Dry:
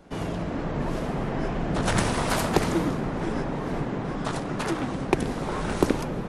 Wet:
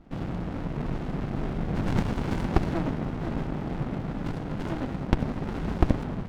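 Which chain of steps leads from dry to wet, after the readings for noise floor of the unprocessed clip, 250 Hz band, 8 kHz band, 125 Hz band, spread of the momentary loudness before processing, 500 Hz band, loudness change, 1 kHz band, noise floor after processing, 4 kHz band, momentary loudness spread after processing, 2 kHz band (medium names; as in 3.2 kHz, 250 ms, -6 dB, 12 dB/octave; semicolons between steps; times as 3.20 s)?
-32 dBFS, -2.0 dB, under -15 dB, +0.5 dB, 6 LU, -6.5 dB, -3.0 dB, -6.5 dB, -35 dBFS, -10.0 dB, 6 LU, -7.5 dB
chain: low-pass 3.4 kHz 12 dB/octave; sliding maximum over 65 samples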